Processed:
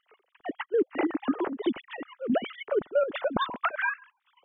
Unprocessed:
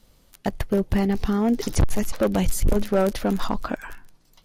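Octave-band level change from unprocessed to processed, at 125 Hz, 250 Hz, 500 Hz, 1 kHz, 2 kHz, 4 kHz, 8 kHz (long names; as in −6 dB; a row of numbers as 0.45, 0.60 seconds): −23.0 dB, −8.0 dB, −3.0 dB, −1.5 dB, +3.5 dB, −4.0 dB, below −40 dB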